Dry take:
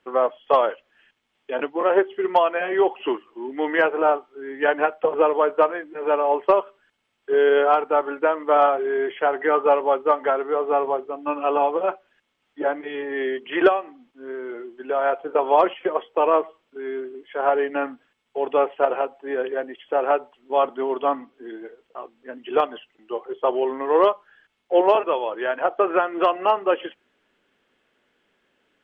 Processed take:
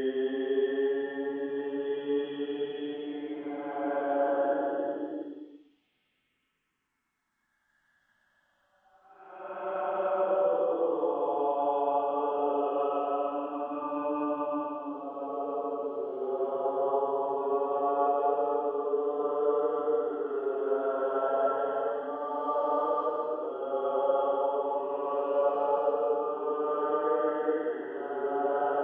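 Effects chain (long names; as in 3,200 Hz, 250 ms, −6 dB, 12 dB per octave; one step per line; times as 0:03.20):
played backwards from end to start
downward compressor, threshold −22 dBFS, peak gain reduction 11.5 dB
phaser swept by the level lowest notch 370 Hz, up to 2,200 Hz, full sweep at −27 dBFS
extreme stretch with random phases 7.2×, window 0.25 s, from 0:15.55
level −1.5 dB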